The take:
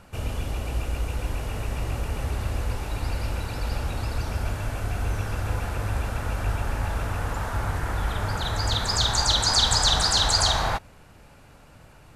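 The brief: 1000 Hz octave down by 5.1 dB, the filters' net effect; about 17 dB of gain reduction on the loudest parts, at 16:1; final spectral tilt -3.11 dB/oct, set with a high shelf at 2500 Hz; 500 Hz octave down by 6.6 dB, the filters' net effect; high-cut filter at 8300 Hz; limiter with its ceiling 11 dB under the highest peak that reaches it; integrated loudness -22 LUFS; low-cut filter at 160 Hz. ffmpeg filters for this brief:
-af "highpass=160,lowpass=8.3k,equalizer=f=500:t=o:g=-7,equalizer=f=1k:t=o:g=-5,highshelf=f=2.5k:g=3.5,acompressor=threshold=-33dB:ratio=16,volume=20dB,alimiter=limit=-14dB:level=0:latency=1"

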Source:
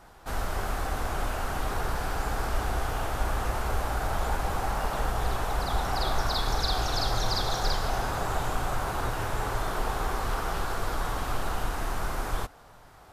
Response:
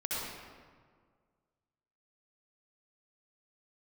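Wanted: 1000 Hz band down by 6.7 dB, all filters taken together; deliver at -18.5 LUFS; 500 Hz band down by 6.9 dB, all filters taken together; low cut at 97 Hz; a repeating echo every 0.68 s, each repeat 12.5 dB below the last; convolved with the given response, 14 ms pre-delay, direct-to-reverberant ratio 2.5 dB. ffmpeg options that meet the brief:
-filter_complex "[0:a]highpass=97,equalizer=f=500:t=o:g=-7,equalizer=f=1k:t=o:g=-6.5,aecho=1:1:680|1360|2040:0.237|0.0569|0.0137,asplit=2[a][b];[1:a]atrim=start_sample=2205,adelay=14[c];[b][c]afir=irnorm=-1:irlink=0,volume=-8dB[d];[a][d]amix=inputs=2:normalize=0,volume=14.5dB"

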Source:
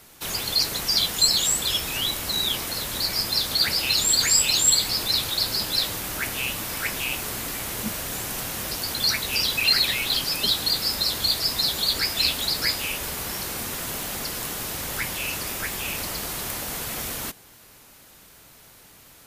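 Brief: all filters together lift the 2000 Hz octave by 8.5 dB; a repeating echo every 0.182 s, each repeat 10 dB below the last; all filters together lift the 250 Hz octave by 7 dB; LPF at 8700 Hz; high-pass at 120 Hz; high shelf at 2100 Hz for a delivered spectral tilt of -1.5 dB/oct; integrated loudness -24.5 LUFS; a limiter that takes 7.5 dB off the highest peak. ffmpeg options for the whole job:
-af "highpass=120,lowpass=8.7k,equalizer=f=250:t=o:g=9,equalizer=f=2k:t=o:g=6.5,highshelf=f=2.1k:g=6.5,alimiter=limit=-8dB:level=0:latency=1,aecho=1:1:182|364|546|728:0.316|0.101|0.0324|0.0104,volume=-6.5dB"

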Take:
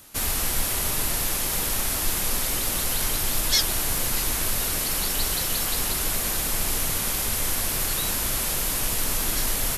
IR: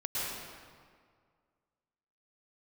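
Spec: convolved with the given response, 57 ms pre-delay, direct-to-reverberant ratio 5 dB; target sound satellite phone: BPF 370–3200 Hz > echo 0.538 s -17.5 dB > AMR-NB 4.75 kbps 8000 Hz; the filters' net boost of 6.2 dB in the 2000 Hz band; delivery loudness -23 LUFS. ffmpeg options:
-filter_complex "[0:a]equalizer=f=2k:t=o:g=8.5,asplit=2[a][b];[1:a]atrim=start_sample=2205,adelay=57[c];[b][c]afir=irnorm=-1:irlink=0,volume=-11dB[d];[a][d]amix=inputs=2:normalize=0,highpass=370,lowpass=3.2k,aecho=1:1:538:0.133,volume=11dB" -ar 8000 -c:a libopencore_amrnb -b:a 4750

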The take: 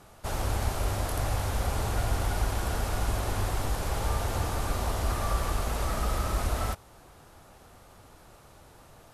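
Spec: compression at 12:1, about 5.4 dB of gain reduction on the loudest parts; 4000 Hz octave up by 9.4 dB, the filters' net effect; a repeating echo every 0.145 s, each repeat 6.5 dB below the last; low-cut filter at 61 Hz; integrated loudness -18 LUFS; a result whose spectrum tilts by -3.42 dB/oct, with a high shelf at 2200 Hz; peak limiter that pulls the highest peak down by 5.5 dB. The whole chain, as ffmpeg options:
-af "highpass=61,highshelf=f=2.2k:g=4.5,equalizer=f=4k:t=o:g=7.5,acompressor=threshold=-30dB:ratio=12,alimiter=level_in=2dB:limit=-24dB:level=0:latency=1,volume=-2dB,aecho=1:1:145|290|435|580|725|870:0.473|0.222|0.105|0.0491|0.0231|0.0109,volume=16.5dB"

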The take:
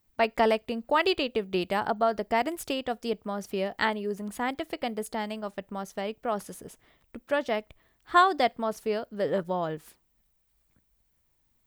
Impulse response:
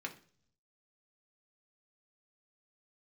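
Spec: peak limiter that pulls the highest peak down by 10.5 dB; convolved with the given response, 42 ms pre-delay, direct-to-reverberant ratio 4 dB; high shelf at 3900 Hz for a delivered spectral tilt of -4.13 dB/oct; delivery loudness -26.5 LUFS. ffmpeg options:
-filter_complex "[0:a]highshelf=f=3.9k:g=5,alimiter=limit=-19dB:level=0:latency=1,asplit=2[a][b];[1:a]atrim=start_sample=2205,adelay=42[c];[b][c]afir=irnorm=-1:irlink=0,volume=-4.5dB[d];[a][d]amix=inputs=2:normalize=0,volume=4dB"

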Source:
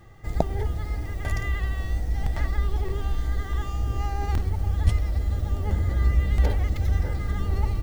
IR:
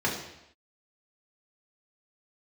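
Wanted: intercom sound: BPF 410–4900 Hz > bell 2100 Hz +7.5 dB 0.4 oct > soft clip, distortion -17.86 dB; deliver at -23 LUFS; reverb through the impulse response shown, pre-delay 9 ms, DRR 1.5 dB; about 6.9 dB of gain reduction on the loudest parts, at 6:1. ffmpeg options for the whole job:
-filter_complex "[0:a]acompressor=threshold=-23dB:ratio=6,asplit=2[a][b];[1:a]atrim=start_sample=2205,adelay=9[c];[b][c]afir=irnorm=-1:irlink=0,volume=-12.5dB[d];[a][d]amix=inputs=2:normalize=0,highpass=410,lowpass=4.9k,equalizer=f=2.1k:t=o:w=0.4:g=7.5,asoftclip=threshold=-24dB,volume=13.5dB"

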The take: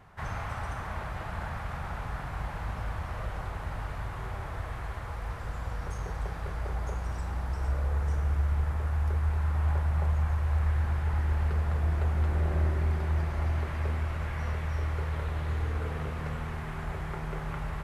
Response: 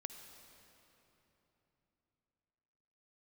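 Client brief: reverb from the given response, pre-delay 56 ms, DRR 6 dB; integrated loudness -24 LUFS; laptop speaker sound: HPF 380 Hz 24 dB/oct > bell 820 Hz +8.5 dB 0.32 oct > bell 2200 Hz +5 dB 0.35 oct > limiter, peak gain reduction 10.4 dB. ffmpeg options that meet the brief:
-filter_complex "[0:a]asplit=2[a][b];[1:a]atrim=start_sample=2205,adelay=56[c];[b][c]afir=irnorm=-1:irlink=0,volume=-3dB[d];[a][d]amix=inputs=2:normalize=0,highpass=f=380:w=0.5412,highpass=f=380:w=1.3066,equalizer=f=820:t=o:w=0.32:g=8.5,equalizer=f=2.2k:t=o:w=0.35:g=5,volume=17.5dB,alimiter=limit=-15.5dB:level=0:latency=1"

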